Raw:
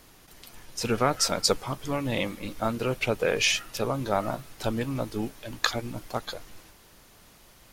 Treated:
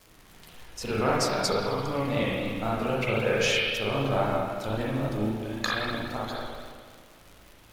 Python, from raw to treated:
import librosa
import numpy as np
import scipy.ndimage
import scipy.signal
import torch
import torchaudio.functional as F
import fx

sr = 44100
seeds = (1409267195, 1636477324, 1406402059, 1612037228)

y = fx.rev_spring(x, sr, rt60_s=1.7, pass_ms=(37, 56), chirp_ms=30, drr_db=-6.5)
y = fx.dmg_crackle(y, sr, seeds[0], per_s=140.0, level_db=-34.0)
y = fx.vibrato(y, sr, rate_hz=3.8, depth_cents=45.0)
y = F.gain(torch.from_numpy(y), -6.0).numpy()